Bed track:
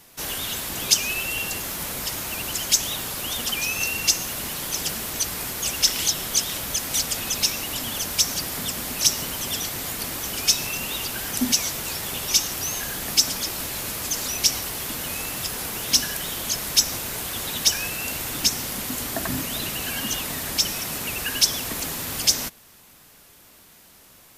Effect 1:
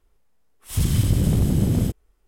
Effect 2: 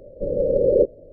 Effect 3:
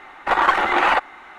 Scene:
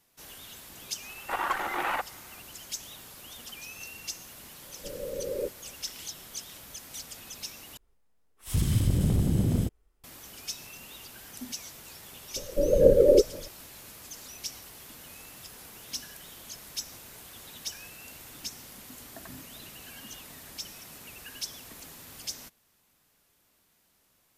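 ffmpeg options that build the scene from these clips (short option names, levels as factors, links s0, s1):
-filter_complex "[2:a]asplit=2[s0][s1];[0:a]volume=0.133[s2];[s1]aphaser=in_gain=1:out_gain=1:delay=3.4:decay=0.58:speed=2:type=sinusoidal[s3];[s2]asplit=2[s4][s5];[s4]atrim=end=7.774[s6];[1:a]atrim=end=2.27,asetpts=PTS-STARTPTS,volume=0.531[s7];[s5]atrim=start=10.036[s8];[3:a]atrim=end=1.38,asetpts=PTS-STARTPTS,volume=0.224,afade=t=in:d=0.004:c=hsin,afade=t=out:st=1.376:d=0.004:c=hsin,adelay=1020[s9];[s0]atrim=end=1.12,asetpts=PTS-STARTPTS,volume=0.158,afade=t=in:d=0.004:c=hsin,afade=t=out:st=1.116:d=0.004:c=hsin,adelay=4630[s10];[s3]atrim=end=1.12,asetpts=PTS-STARTPTS,volume=0.794,afade=t=in:d=0.004:c=hsin,afade=t=out:st=1.116:d=0.004:c=hsin,adelay=545076S[s11];[s6][s7]acrossfade=d=0.004:c1=hsin:c2=hsin[s12];[s12][s8]acrossfade=d=0.004:c1=hsin:c2=hsin[s13];[s13][s9][s10][s11]amix=inputs=4:normalize=0"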